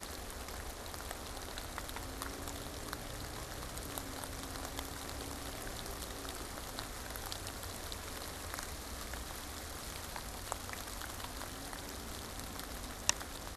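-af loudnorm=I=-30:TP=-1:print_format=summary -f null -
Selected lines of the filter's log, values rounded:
Input Integrated:    -42.3 LUFS
Input True Peak:      -7.3 dBTP
Input LRA:             2.4 LU
Input Threshold:     -52.3 LUFS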